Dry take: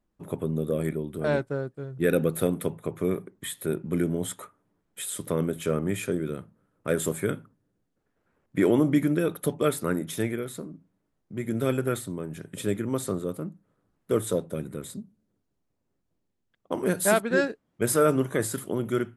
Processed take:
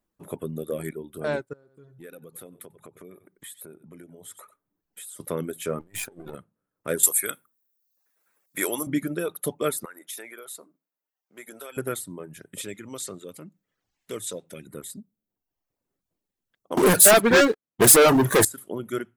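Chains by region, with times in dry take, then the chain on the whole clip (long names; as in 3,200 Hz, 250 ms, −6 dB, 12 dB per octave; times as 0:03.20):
0:01.53–0:05.20: single-tap delay 92 ms −13.5 dB + downward compressor 3 to 1, threshold −44 dBFS
0:05.80–0:06.35: gain on one half-wave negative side −12 dB + compressor whose output falls as the input rises −35 dBFS, ratio −0.5
0:07.03–0:08.87: spectral tilt +4.5 dB per octave + notch filter 3,000 Hz, Q 11
0:09.85–0:11.77: Bessel high-pass filter 730 Hz + downward compressor 4 to 1, threshold −35 dBFS
0:12.61–0:14.67: flat-topped bell 3,900 Hz +9.5 dB 2.3 octaves + downward compressor 1.5 to 1, threshold −42 dBFS
0:16.77–0:18.45: leveller curve on the samples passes 5 + highs frequency-modulated by the lows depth 0.17 ms
whole clip: high-shelf EQ 10,000 Hz +9.5 dB; reverb reduction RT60 0.81 s; low-shelf EQ 220 Hz −7.5 dB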